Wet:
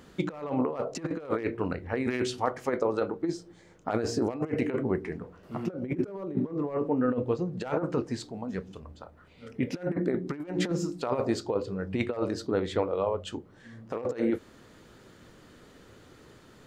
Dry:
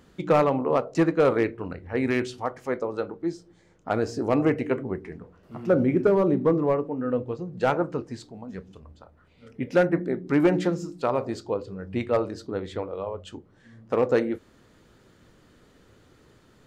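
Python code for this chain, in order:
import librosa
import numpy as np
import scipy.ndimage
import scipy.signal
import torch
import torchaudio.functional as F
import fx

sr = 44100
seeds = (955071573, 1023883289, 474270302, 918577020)

y = fx.over_compress(x, sr, threshold_db=-27.0, ratio=-0.5)
y = fx.low_shelf(y, sr, hz=130.0, db=-4.5)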